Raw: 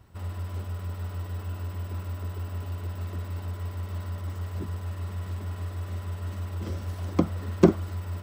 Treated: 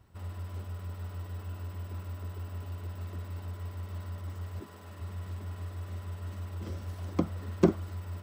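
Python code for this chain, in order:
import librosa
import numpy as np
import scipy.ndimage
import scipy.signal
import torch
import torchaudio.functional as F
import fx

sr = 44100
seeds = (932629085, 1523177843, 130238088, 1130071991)

y = fx.highpass(x, sr, hz=fx.line((4.59, 310.0), (5.0, 110.0)), slope=12, at=(4.59, 5.0), fade=0.02)
y = y * 10.0 ** (-5.5 / 20.0)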